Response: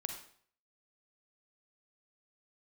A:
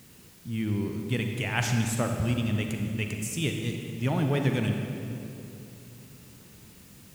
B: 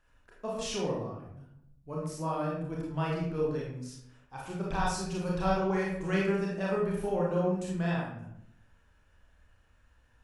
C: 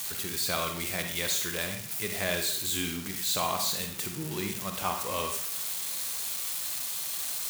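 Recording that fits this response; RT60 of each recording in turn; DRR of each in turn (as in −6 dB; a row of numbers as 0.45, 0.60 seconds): C; 2.8, 0.75, 0.55 seconds; 3.0, −4.5, 4.5 decibels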